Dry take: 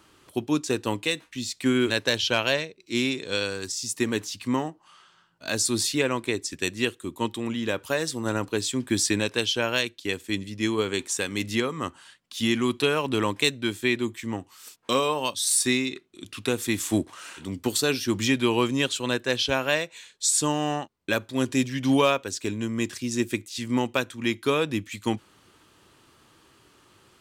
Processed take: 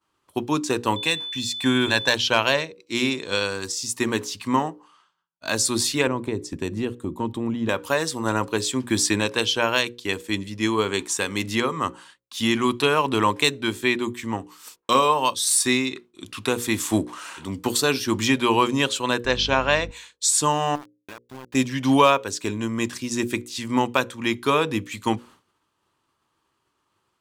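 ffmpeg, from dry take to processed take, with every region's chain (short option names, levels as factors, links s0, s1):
-filter_complex "[0:a]asettb=1/sr,asplit=3[s0][s1][s2];[s0]atrim=end=0.964[s3];[s1]atrim=start=0.96:end=2.14,asetpts=PTS-STARTPTS,afade=t=in:d=0.004:c=qsin,afade=t=out:st=1.176:d=0.004:c=qsin,aecho=1:1:1.2:0.37,atrim=end_sample=52038,aeval=exprs='val(0)+0.0251*sin(2*PI*3500*n/s)':c=same[s4];[s2]atrim=start=2.136[s5];[s3][s4]acrossfade=d=0.004:c1=hsin:c2=qsin[s6];[s6][s5]acrossfade=d=0.004:c1=qsin:c2=hsin,asettb=1/sr,asplit=3[s7][s8][s9];[s7]atrim=end=6.074[s10];[s8]atrim=start=6.07:end=7.69,asetpts=PTS-STARTPTS,afade=t=in:d=0.004:c=qsin,afade=t=out:st=1.616:d=0.004:c=qsin,tiltshelf=f=670:g=9,acompressor=threshold=0.0562:ratio=2.5:attack=3.2:release=140:knee=1:detection=peak[s11];[s9]atrim=start=7.686[s12];[s10][s11]acrossfade=d=0.004:c1=hsin:c2=qsin[s13];[s13][s12]acrossfade=d=0.004:c1=qsin:c2=hsin,asettb=1/sr,asplit=3[s14][s15][s16];[s14]atrim=end=19.254[s17];[s15]atrim=start=19.25:end=19.91,asetpts=PTS-STARTPTS,afade=t=in:d=0.004:c=qsin,afade=t=out:st=0.656:d=0.004:c=qsin,lowpass=f=6600:w=0.5412,lowpass=f=6600:w=1.3066,aeval=exprs='val(0)+0.0158*(sin(2*PI*50*n/s)+sin(2*PI*2*50*n/s)/2+sin(2*PI*3*50*n/s)/3+sin(2*PI*4*50*n/s)/4+sin(2*PI*5*50*n/s)/5)':c=same[s18];[s16]atrim=start=19.906[s19];[s17][s18]acrossfade=d=0.004:c1=hsin:c2=qsin[s20];[s20][s19]acrossfade=d=0.004:c1=qsin:c2=hsin,asettb=1/sr,asplit=3[s21][s22][s23];[s21]atrim=end=20.754[s24];[s22]atrim=start=20.75:end=21.55,asetpts=PTS-STARTPTS,afade=t=in:d=0.004:c=qsin,afade=t=out:st=0.796:d=0.004:c=qsin,lowpass=f=3400:w=0.5412,lowpass=f=3400:w=1.3066,acompressor=threshold=0.0141:ratio=16:attack=3.2:release=140:knee=1:detection=peak,aeval=exprs='val(0)*gte(abs(val(0)),0.00944)':c=same[s25];[s23]atrim=start=21.546[s26];[s24][s25]acrossfade=d=0.004:c1=hsin:c2=qsin[s27];[s27][s26]acrossfade=d=0.004:c1=qsin:c2=hsin,agate=range=0.0224:threshold=0.00562:ratio=3:detection=peak,equalizer=f=1000:w=2:g=7.5,bandreject=f=60:t=h:w=6,bandreject=f=120:t=h:w=6,bandreject=f=180:t=h:w=6,bandreject=f=240:t=h:w=6,bandreject=f=300:t=h:w=6,bandreject=f=360:t=h:w=6,bandreject=f=420:t=h:w=6,bandreject=f=480:t=h:w=6,bandreject=f=540:t=h:w=6,volume=1.33"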